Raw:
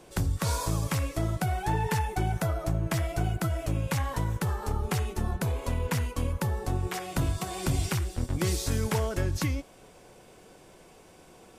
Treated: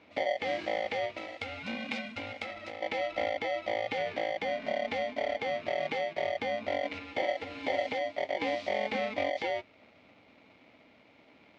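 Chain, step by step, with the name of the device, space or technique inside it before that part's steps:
0:01.17–0:02.82: spectral tilt +3.5 dB per octave
ring modulator pedal into a guitar cabinet (ring modulator with a square carrier 650 Hz; loudspeaker in its box 98–4,000 Hz, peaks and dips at 140 Hz −5 dB, 260 Hz +8 dB, 600 Hz +7 dB, 1,100 Hz −9 dB, 1,600 Hz −7 dB, 2,200 Hz +10 dB)
level −7 dB

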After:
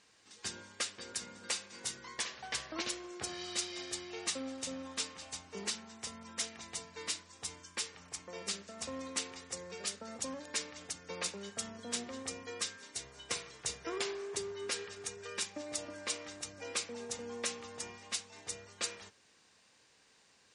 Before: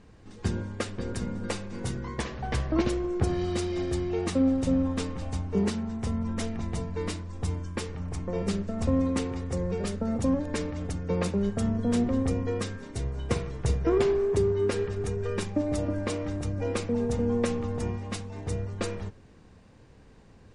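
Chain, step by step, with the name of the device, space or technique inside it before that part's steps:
piezo pickup straight into a mixer (low-pass filter 7,200 Hz 12 dB per octave; first difference)
level +8.5 dB

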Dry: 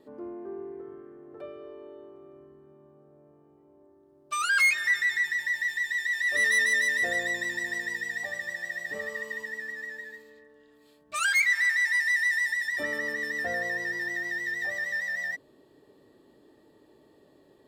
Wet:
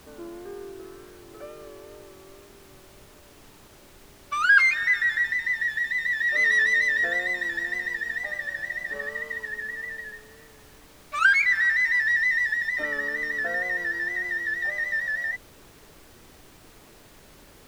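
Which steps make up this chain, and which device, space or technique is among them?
horn gramophone (band-pass filter 210–4,500 Hz; parametric band 1,500 Hz +10.5 dB 0.41 octaves; tape wow and flutter; pink noise bed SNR 24 dB)

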